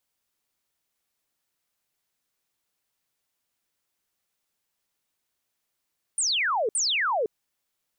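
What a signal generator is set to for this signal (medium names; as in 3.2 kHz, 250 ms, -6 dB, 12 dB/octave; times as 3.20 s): burst of laser zaps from 9.5 kHz, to 400 Hz, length 0.51 s sine, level -22 dB, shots 2, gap 0.06 s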